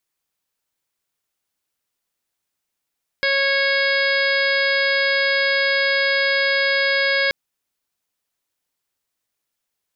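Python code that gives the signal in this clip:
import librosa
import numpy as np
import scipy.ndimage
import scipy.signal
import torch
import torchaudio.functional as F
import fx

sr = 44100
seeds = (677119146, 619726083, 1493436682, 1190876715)

y = fx.additive_steady(sr, length_s=4.08, hz=550.0, level_db=-22.5, upper_db=(-11.5, 2.0, 1.5, -12.0, -6.5, -9.0, -8.0, -5.0))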